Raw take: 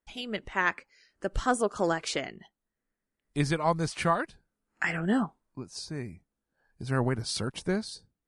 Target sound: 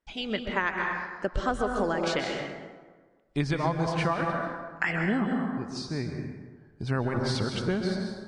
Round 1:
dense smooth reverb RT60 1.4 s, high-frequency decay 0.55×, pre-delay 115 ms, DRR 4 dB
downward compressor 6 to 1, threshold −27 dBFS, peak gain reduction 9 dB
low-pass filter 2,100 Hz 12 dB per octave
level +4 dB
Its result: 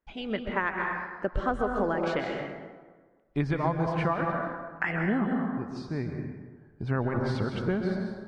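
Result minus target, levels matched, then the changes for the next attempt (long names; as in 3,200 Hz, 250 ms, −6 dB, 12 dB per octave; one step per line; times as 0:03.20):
4,000 Hz band −8.0 dB
change: low-pass filter 4,900 Hz 12 dB per octave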